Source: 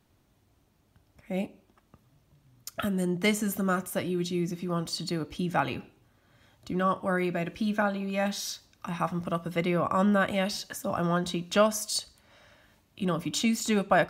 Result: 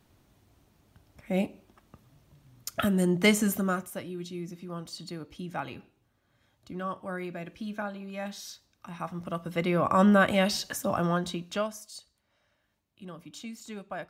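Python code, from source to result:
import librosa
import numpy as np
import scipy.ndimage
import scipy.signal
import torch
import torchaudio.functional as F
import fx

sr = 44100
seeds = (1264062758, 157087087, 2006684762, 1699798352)

y = fx.gain(x, sr, db=fx.line((3.46, 3.5), (4.03, -8.0), (8.92, -8.0), (10.01, 3.5), (10.78, 3.5), (11.44, -4.0), (11.91, -15.0)))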